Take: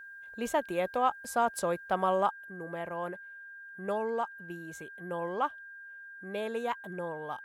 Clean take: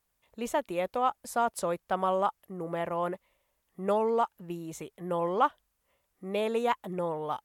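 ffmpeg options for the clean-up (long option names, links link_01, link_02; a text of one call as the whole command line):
ffmpeg -i in.wav -af "bandreject=frequency=1600:width=30,asetnsamples=nb_out_samples=441:pad=0,asendcmd='2.31 volume volume 5.5dB',volume=0dB" out.wav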